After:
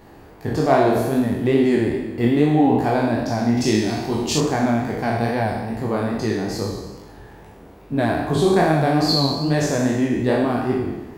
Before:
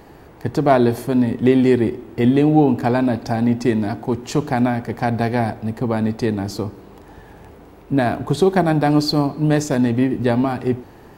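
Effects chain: spectral sustain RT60 1.27 s; 3.57–4.38 s: resonant high shelf 2.3 kHz +7.5 dB, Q 1.5; chorus 2.4 Hz, delay 18.5 ms, depth 7.5 ms; trim -1 dB

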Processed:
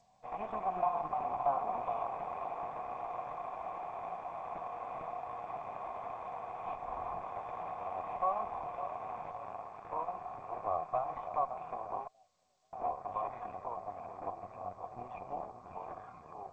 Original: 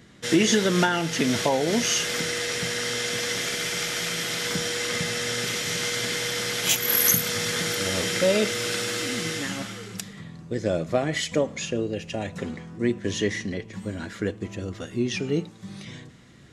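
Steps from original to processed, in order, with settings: 14.37–15.03 s: high-pass 51 Hz 24 dB/octave; static phaser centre 1.3 kHz, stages 6; ever faster or slower copies 142 ms, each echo -3 st, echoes 3, each echo -6 dB; on a send: feedback echo behind a low-pass 561 ms, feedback 65%, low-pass 2.8 kHz, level -11 dB; 9.31–9.85 s: on the sum: AM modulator 110 Hz, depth 45%; 12.07–12.73 s: inverted gate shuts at -29 dBFS, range -31 dB; Chebyshev shaper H 5 -31 dB, 8 -8 dB, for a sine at -9 dBFS; cascade formant filter a; in parallel at -1 dB: compression 16:1, threshold -45 dBFS, peak gain reduction 20 dB; on the sum: trim -1.5 dB; G.722 64 kbps 16 kHz

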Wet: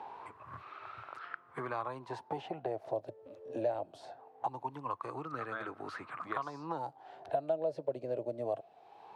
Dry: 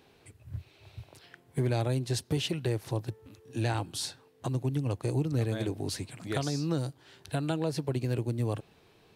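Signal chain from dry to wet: wah-wah 0.22 Hz 580–1300 Hz, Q 11; three bands compressed up and down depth 70%; trim +14.5 dB

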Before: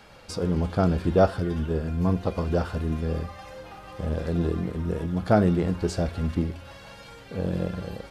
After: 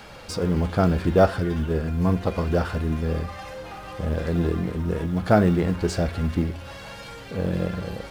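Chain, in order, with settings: companding laws mixed up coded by mu; dynamic bell 1.9 kHz, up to +4 dB, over -44 dBFS, Q 1.3; trim +1.5 dB

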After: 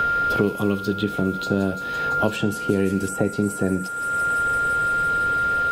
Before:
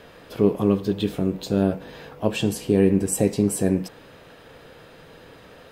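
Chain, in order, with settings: whistle 1.4 kHz -30 dBFS; on a send: feedback echo behind a high-pass 169 ms, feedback 78%, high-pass 5 kHz, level -13 dB; on the sum: three bands compressed up and down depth 100%; trim -1.5 dB

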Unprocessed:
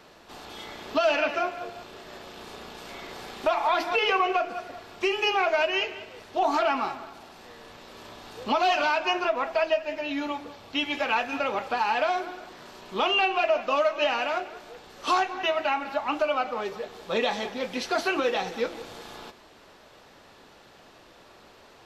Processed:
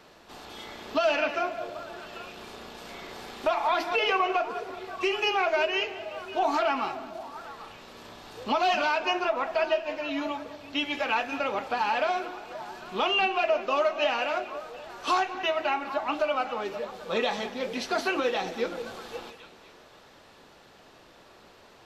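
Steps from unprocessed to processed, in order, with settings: repeats whose band climbs or falls 264 ms, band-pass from 170 Hz, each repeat 1.4 oct, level -7 dB; trim -1.5 dB

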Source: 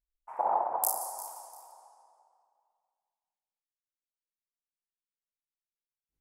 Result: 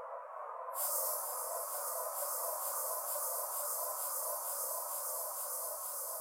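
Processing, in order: spectral gate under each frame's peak -10 dB weak; steep high-pass 490 Hz 96 dB/octave; on a send: echo with a slow build-up 109 ms, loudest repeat 5, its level -4 dB; on the sum: Paulstretch 4.2×, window 0.05 s, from 0.64 s; trim -5 dB

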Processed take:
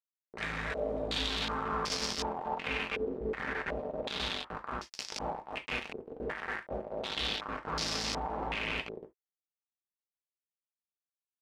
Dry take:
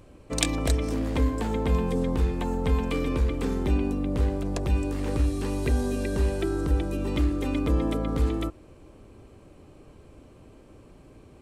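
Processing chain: 4.52–7.17 s: comb filter that takes the minimum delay 4 ms; feedback comb 54 Hz, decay 2 s, harmonics all, mix 90%; multi-head delay 276 ms, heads first and second, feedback 52%, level -11.5 dB; bit crusher 6-bit; tilt EQ +2.5 dB/octave; gated-style reverb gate 90 ms falling, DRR 4.5 dB; step-sequenced low-pass 2.7 Hz 420–5200 Hz

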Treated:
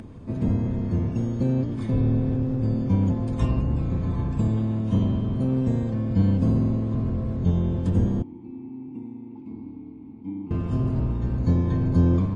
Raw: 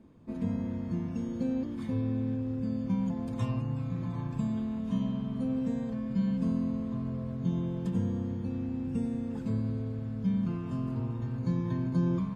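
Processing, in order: octave divider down 1 oct, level +2 dB; upward compressor, threshold -38 dBFS; 8.22–10.51 s: vowel filter u; trim +5.5 dB; MP3 40 kbps 32 kHz

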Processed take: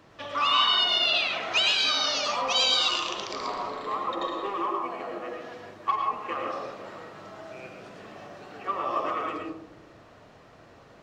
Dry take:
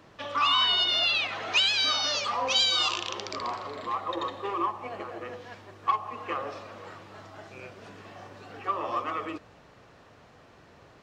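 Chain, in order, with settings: 4.14–5.59 s: peaking EQ 75 Hz -12.5 dB 0.85 oct; reverberation RT60 0.90 s, pre-delay 70 ms, DRR 0.5 dB; trim -1 dB

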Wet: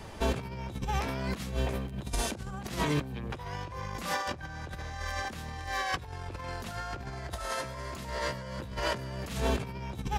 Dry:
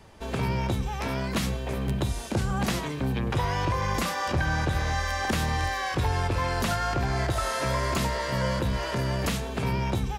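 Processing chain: compressor with a negative ratio -33 dBFS, ratio -0.5

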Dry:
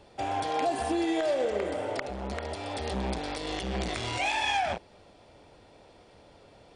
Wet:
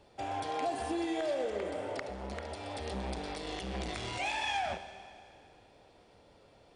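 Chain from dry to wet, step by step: vibrato 5.9 Hz 9.2 cents; Schroeder reverb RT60 2.4 s, combs from 28 ms, DRR 10.5 dB; trim -6 dB

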